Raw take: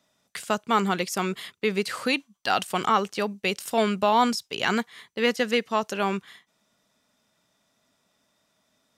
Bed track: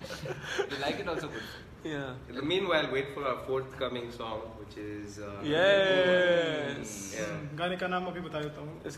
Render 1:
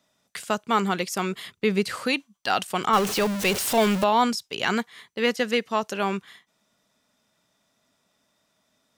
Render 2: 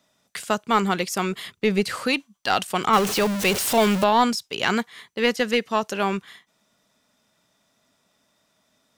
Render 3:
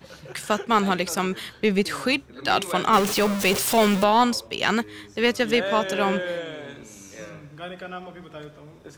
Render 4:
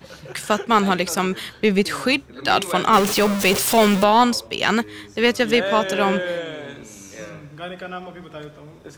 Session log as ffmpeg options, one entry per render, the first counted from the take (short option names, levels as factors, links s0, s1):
-filter_complex "[0:a]asettb=1/sr,asplit=3[s0][s1][s2];[s0]atrim=end=1.464[s3];[s1]atrim=start=1.46:end=1.96,asetpts=PTS-STARTPTS,afade=t=in:d=0.004:c=qsin,afade=t=out:st=0.496:d=0.004:c=qsin,lowshelf=f=170:g=12[s4];[s2]atrim=start=1.956[s5];[s3][s4]acrossfade=d=0.004:c1=hsin:c2=qsin[s6];[s6][s5]acrossfade=d=0.004:c1=qsin:c2=hsin,asettb=1/sr,asplit=3[s7][s8][s9];[s7]atrim=end=2.934[s10];[s8]atrim=start=2.93:end=4.04,asetpts=PTS-STARTPTS,afade=t=in:d=0.004:c=qsin,afade=t=out:st=1.106:d=0.004:c=qsin,aeval=exprs='val(0)+0.5*0.0668*sgn(val(0))':c=same[s11];[s9]atrim=start=4.036[s12];[s10][s11]acrossfade=d=0.004:c1=hsin:c2=qsin[s13];[s13][s12]acrossfade=d=0.004:c1=qsin:c2=hsin"
-filter_complex "[0:a]aeval=exprs='0.398*(cos(1*acos(clip(val(0)/0.398,-1,1)))-cos(1*PI/2))+0.112*(cos(2*acos(clip(val(0)/0.398,-1,1)))-cos(2*PI/2))':c=same,asplit=2[s0][s1];[s1]aeval=exprs='clip(val(0),-1,0.0237)':c=same,volume=0.398[s2];[s0][s2]amix=inputs=2:normalize=0"
-filter_complex "[1:a]volume=0.631[s0];[0:a][s0]amix=inputs=2:normalize=0"
-af "volume=1.5,alimiter=limit=0.794:level=0:latency=1"